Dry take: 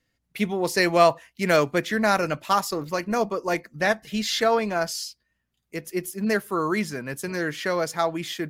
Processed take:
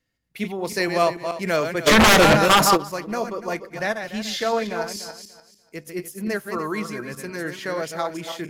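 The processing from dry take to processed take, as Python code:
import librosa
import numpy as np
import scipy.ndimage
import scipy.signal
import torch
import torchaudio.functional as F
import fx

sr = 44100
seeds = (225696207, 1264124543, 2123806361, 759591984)

y = fx.reverse_delay_fb(x, sr, ms=146, feedback_pct=47, wet_db=-7)
y = fx.fold_sine(y, sr, drive_db=fx.line((1.86, 17.0), (2.76, 10.0)), ceiling_db=-6.5, at=(1.86, 2.76), fade=0.02)
y = y * 10.0 ** (-3.0 / 20.0)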